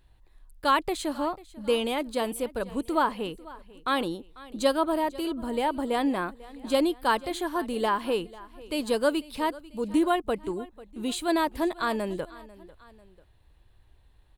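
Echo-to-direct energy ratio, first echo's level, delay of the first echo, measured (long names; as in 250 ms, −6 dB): −19.0 dB, −20.0 dB, 494 ms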